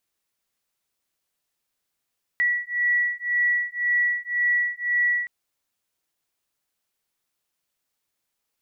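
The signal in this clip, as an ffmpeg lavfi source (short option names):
-f lavfi -i "aevalsrc='0.0668*(sin(2*PI*1940*t)+sin(2*PI*1941.9*t))':d=2.87:s=44100"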